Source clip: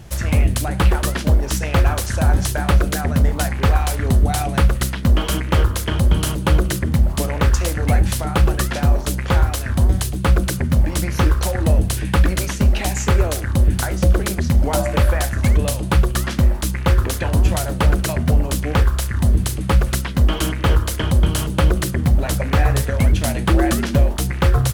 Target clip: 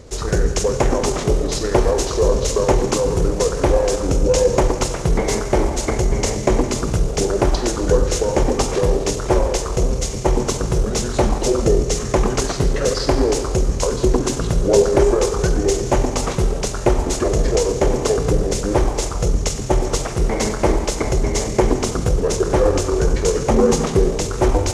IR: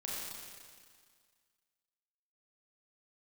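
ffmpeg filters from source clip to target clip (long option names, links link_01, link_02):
-filter_complex "[0:a]equalizer=frequency=680:width_type=o:width=1.3:gain=14.5,asplit=2[link_01][link_02];[1:a]atrim=start_sample=2205[link_03];[link_02][link_03]afir=irnorm=-1:irlink=0,volume=-4dB[link_04];[link_01][link_04]amix=inputs=2:normalize=0,asetrate=30296,aresample=44100,atempo=1.45565,equalizer=frequency=6200:width_type=o:width=0.72:gain=9.5,volume=-6.5dB"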